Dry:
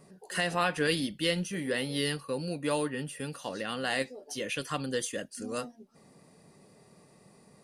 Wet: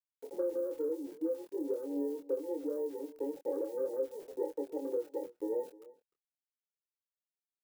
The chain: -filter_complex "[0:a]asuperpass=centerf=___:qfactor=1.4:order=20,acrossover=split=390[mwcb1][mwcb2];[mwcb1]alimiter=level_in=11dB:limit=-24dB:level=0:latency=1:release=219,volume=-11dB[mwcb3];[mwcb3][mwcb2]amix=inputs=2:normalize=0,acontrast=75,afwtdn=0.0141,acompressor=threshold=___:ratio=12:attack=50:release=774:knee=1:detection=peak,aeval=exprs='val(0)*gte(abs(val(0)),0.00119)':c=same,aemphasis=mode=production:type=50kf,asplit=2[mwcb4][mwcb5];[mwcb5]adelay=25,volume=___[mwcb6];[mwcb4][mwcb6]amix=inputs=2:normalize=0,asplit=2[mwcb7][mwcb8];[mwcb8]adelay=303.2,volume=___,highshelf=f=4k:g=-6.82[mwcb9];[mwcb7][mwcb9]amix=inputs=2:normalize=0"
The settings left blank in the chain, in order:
400, -34dB, -5dB, -20dB